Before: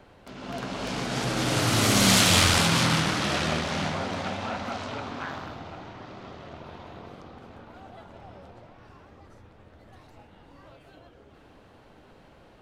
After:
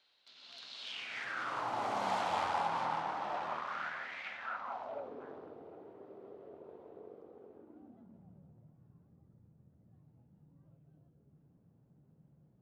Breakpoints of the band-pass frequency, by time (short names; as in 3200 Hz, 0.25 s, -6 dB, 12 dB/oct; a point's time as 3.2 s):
band-pass, Q 4.4
0.78 s 4000 Hz
1.71 s 850 Hz
3.4 s 850 Hz
4.25 s 2300 Hz
5.16 s 430 Hz
7.47 s 430 Hz
8.39 s 150 Hz